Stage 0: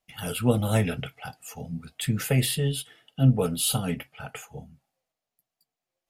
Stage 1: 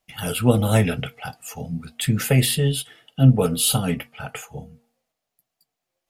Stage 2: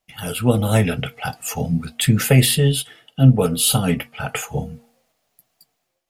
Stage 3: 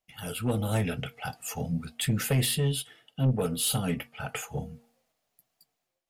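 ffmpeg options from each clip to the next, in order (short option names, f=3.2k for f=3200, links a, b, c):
-af "bandreject=f=234.8:t=h:w=4,bandreject=f=469.6:t=h:w=4,bandreject=f=704.4:t=h:w=4,bandreject=f=939.2:t=h:w=4,bandreject=f=1.174k:t=h:w=4,volume=5.5dB"
-af "dynaudnorm=f=170:g=5:m=13dB,volume=-1dB"
-af "asoftclip=type=tanh:threshold=-9.5dB,volume=-9dB"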